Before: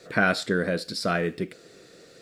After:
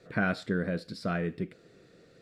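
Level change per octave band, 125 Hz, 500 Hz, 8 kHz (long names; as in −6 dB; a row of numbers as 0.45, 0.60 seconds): −1.5, −7.5, −16.0 decibels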